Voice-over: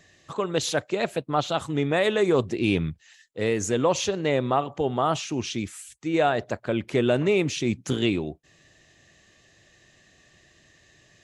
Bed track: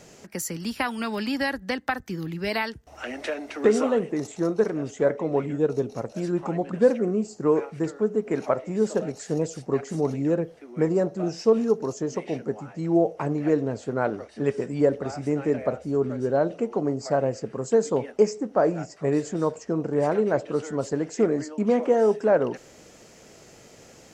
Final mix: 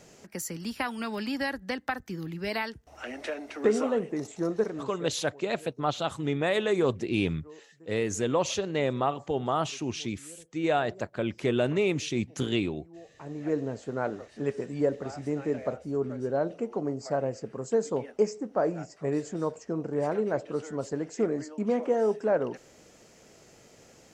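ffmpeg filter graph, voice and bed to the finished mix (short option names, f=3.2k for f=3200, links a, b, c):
-filter_complex "[0:a]adelay=4500,volume=-4dB[a];[1:a]volume=18dB,afade=t=out:st=4.57:d=0.56:silence=0.0668344,afade=t=in:st=13.11:d=0.48:silence=0.0749894[b];[a][b]amix=inputs=2:normalize=0"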